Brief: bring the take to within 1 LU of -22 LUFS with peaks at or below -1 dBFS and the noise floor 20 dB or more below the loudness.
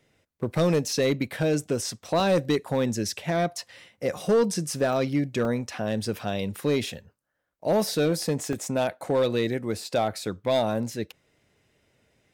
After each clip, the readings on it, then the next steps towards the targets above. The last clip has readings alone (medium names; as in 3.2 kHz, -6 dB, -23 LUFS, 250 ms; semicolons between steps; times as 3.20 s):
clipped samples 0.8%; clipping level -16.0 dBFS; dropouts 7; longest dropout 1.5 ms; loudness -26.5 LUFS; peak level -16.0 dBFS; loudness target -22.0 LUFS
-> clip repair -16 dBFS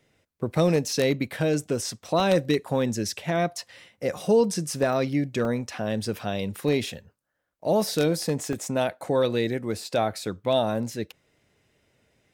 clipped samples 0.0%; dropouts 7; longest dropout 1.5 ms
-> interpolate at 0.91/2.20/4.93/5.45/6.05/8.53/10.19 s, 1.5 ms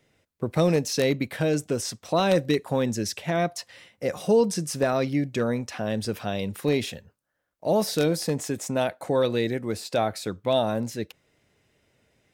dropouts 0; loudness -26.0 LUFS; peak level -7.0 dBFS; loudness target -22.0 LUFS
-> trim +4 dB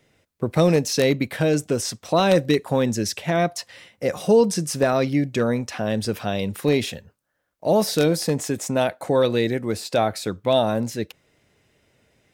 loudness -22.0 LUFS; peak level -3.0 dBFS; noise floor -74 dBFS